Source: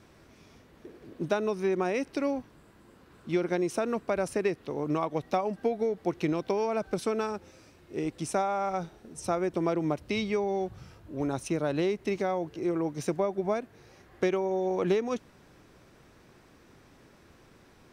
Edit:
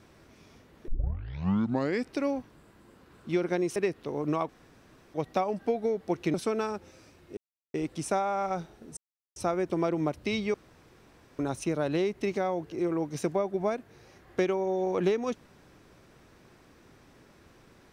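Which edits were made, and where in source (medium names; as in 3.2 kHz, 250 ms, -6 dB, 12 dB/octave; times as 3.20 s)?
0.88 s: tape start 1.25 s
3.76–4.38 s: delete
5.11 s: insert room tone 0.65 s
6.31–6.94 s: delete
7.97 s: insert silence 0.37 s
9.20 s: insert silence 0.39 s
10.38–11.23 s: room tone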